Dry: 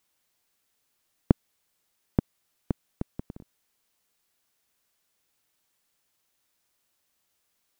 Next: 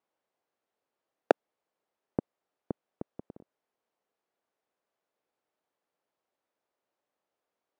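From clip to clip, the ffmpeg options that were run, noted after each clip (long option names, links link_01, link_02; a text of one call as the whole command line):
ffmpeg -i in.wav -af "aeval=exprs='(mod(1.5*val(0)+1,2)-1)/1.5':channel_layout=same,bandpass=frequency=550:width_type=q:width=1.1:csg=0,volume=1.5dB" out.wav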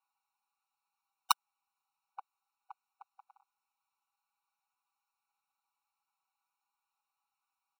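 ffmpeg -i in.wav -af "aecho=1:1:6.1:0.96,aeval=exprs='(mod(2.24*val(0)+1,2)-1)/2.24':channel_layout=same,afftfilt=real='re*eq(mod(floor(b*sr/1024/740),2),1)':imag='im*eq(mod(floor(b*sr/1024/740),2),1)':win_size=1024:overlap=0.75" out.wav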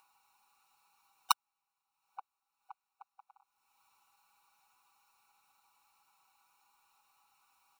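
ffmpeg -i in.wav -af "acompressor=mode=upward:threshold=-57dB:ratio=2.5" out.wav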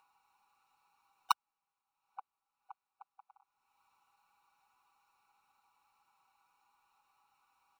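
ffmpeg -i in.wav -af "highshelf=frequency=3700:gain=-11" out.wav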